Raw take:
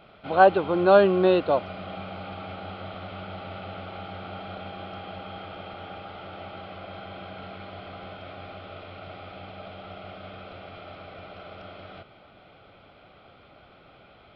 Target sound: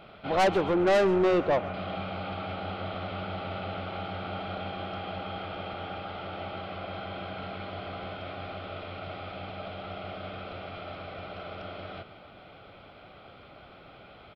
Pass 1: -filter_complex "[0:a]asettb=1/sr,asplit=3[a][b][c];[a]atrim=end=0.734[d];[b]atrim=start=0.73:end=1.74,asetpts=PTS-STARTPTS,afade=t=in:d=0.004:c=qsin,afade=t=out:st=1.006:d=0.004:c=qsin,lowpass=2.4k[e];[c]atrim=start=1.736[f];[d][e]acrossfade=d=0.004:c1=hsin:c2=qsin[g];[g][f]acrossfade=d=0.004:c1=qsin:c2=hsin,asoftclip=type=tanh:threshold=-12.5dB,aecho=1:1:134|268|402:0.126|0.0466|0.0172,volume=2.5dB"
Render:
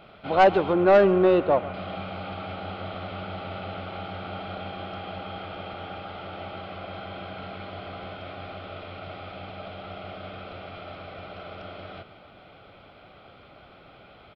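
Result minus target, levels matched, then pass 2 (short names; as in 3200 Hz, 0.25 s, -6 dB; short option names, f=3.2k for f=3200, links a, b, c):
soft clip: distortion -8 dB
-filter_complex "[0:a]asettb=1/sr,asplit=3[a][b][c];[a]atrim=end=0.734[d];[b]atrim=start=0.73:end=1.74,asetpts=PTS-STARTPTS,afade=t=in:d=0.004:c=qsin,afade=t=out:st=1.006:d=0.004:c=qsin,lowpass=2.4k[e];[c]atrim=start=1.736[f];[d][e]acrossfade=d=0.004:c1=hsin:c2=qsin[g];[g][f]acrossfade=d=0.004:c1=qsin:c2=hsin,asoftclip=type=tanh:threshold=-22dB,aecho=1:1:134|268|402:0.126|0.0466|0.0172,volume=2.5dB"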